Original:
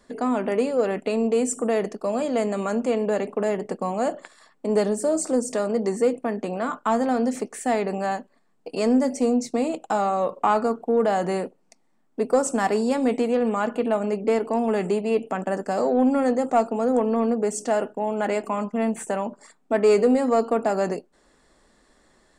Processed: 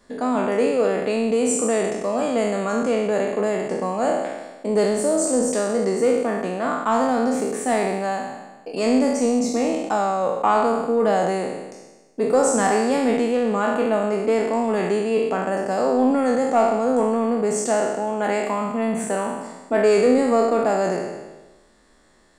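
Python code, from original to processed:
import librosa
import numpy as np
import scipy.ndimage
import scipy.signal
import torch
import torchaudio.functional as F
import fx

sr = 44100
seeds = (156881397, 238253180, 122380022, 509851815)

y = fx.spec_trails(x, sr, decay_s=1.19)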